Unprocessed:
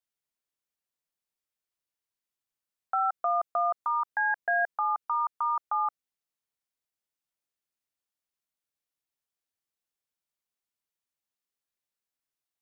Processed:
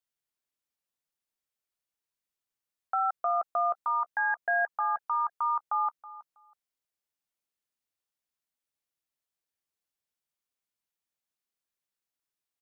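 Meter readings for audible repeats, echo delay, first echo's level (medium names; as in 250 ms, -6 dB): 2, 323 ms, -18.0 dB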